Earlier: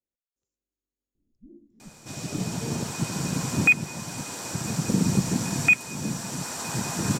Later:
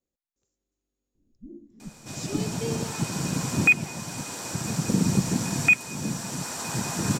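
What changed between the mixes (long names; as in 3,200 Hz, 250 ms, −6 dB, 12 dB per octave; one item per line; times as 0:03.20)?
speech +9.5 dB
first sound +6.0 dB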